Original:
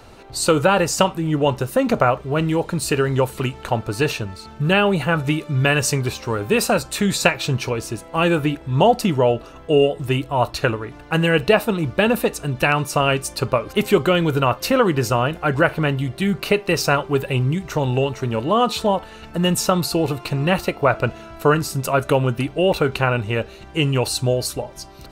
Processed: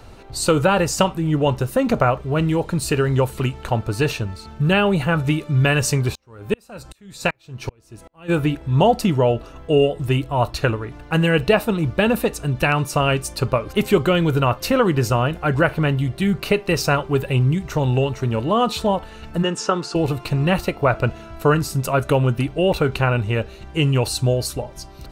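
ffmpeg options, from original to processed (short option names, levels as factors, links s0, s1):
-filter_complex "[0:a]asplit=3[s0][s1][s2];[s0]afade=t=out:st=6.12:d=0.02[s3];[s1]aeval=exprs='val(0)*pow(10,-39*if(lt(mod(-2.6*n/s,1),2*abs(-2.6)/1000),1-mod(-2.6*n/s,1)/(2*abs(-2.6)/1000),(mod(-2.6*n/s,1)-2*abs(-2.6)/1000)/(1-2*abs(-2.6)/1000))/20)':c=same,afade=t=in:st=6.12:d=0.02,afade=t=out:st=8.28:d=0.02[s4];[s2]afade=t=in:st=8.28:d=0.02[s5];[s3][s4][s5]amix=inputs=3:normalize=0,asplit=3[s6][s7][s8];[s6]afade=t=out:st=19.42:d=0.02[s9];[s7]highpass=290,equalizer=f=410:t=q:w=4:g=6,equalizer=f=640:t=q:w=4:g=-6,equalizer=f=1500:t=q:w=4:g=5,equalizer=f=2300:t=q:w=4:g=-4,equalizer=f=4000:t=q:w=4:g=-9,lowpass=f=6800:w=0.5412,lowpass=f=6800:w=1.3066,afade=t=in:st=19.42:d=0.02,afade=t=out:st=19.94:d=0.02[s10];[s8]afade=t=in:st=19.94:d=0.02[s11];[s9][s10][s11]amix=inputs=3:normalize=0,lowshelf=f=130:g=8.5,volume=0.841"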